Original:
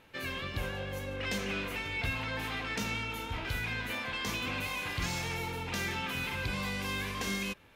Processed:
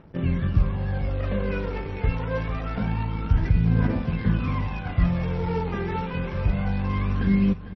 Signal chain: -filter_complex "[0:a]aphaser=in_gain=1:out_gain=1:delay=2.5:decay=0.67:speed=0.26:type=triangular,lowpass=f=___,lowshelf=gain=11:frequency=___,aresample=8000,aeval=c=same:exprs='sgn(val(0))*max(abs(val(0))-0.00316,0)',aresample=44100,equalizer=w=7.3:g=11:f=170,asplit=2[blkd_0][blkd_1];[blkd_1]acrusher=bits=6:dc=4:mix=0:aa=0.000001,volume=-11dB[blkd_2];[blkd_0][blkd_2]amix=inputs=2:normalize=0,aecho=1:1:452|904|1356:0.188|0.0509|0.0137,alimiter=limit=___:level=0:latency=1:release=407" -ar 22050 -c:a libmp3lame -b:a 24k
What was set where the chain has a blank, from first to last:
1400, 430, -8.5dB